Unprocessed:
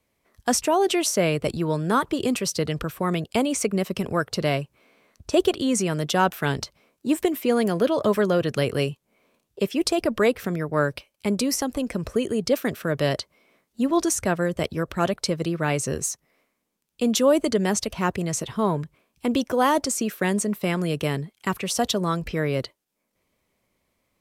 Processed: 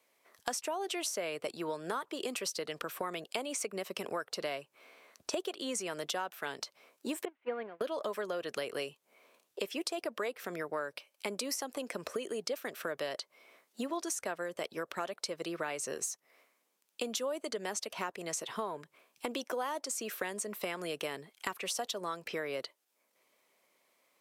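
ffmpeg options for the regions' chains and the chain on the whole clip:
-filter_complex "[0:a]asettb=1/sr,asplit=3[a][b][c];[a]atrim=end=7.254[d];[b]atrim=start=7.25:end=7.81,asetpts=PTS-STARTPTS,afade=t=in:d=0.004:c=qsin,afade=t=out:st=0.556:d=0.004:c=qsin,aeval=exprs='val(0)+0.5*0.0422*sgn(val(0))':c=same,agate=range=-35dB:threshold=-19dB:ratio=16:release=100:detection=peak,lowpass=f=2.5k:w=0.5412,lowpass=f=2.5k:w=1.3066[e];[c]atrim=start=7.806[f];[d][e]acrossfade=d=0.004:c1=hsin:c2=qsin[g];[g][f]acrossfade=d=0.004:c1=qsin:c2=hsin,highpass=470,acompressor=threshold=-37dB:ratio=6,volume=2.5dB"

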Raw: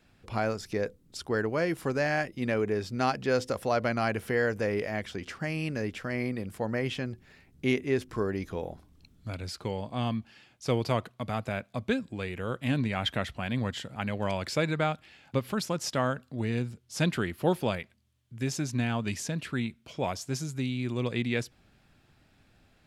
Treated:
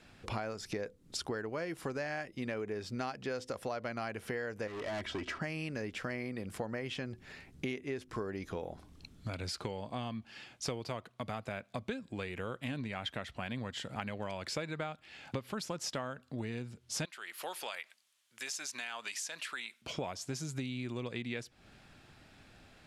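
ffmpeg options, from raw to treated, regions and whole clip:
-filter_complex "[0:a]asettb=1/sr,asplit=3[a][b][c];[a]atrim=end=4.674[d];[b]atrim=start=4.67:end=5.42,asetpts=PTS-STARTPTS,afade=t=in:d=0.004:c=qsin,afade=t=out:st=0.746:d=0.004:c=qsin,lowpass=f=2.6k:p=1,aecho=1:1:3.1:0.57,atrim=end_sample=33075,asoftclip=type=hard:threshold=-34.5dB[e];[c]atrim=start=5.416[f];[d][e]acrossfade=d=0.004:c1=hsin:c2=qsin[g];[g][f]acrossfade=d=0.004:c1=qsin:c2=hsin,asettb=1/sr,asplit=3[h][i][j];[h]atrim=end=17.054[k];[i]atrim=start=17.05:end=19.82,asetpts=PTS-STARTPTS,afade=t=in:d=0.004:c=qsin,afade=t=out:st=2.766:d=0.004:c=qsin,highpass=960,highshelf=f=5.8k:g=6.5,acompressor=threshold=-47dB:ratio=2:attack=3.2:release=140:knee=1:detection=peak[l];[j]atrim=start=19.816[m];[k][l]acrossfade=d=0.004:c1=hsin:c2=qsin[n];[n][m]acrossfade=d=0.004:c1=qsin:c2=hsin,lowpass=11k,lowshelf=f=260:g=-5,acompressor=threshold=-42dB:ratio=8,volume=6.5dB"

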